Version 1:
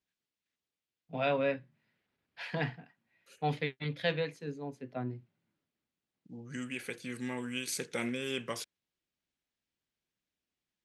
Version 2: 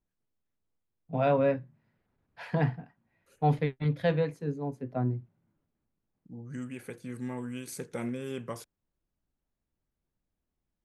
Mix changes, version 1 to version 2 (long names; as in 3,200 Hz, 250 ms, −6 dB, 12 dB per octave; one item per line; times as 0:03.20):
first voice +5.0 dB
master: remove meter weighting curve D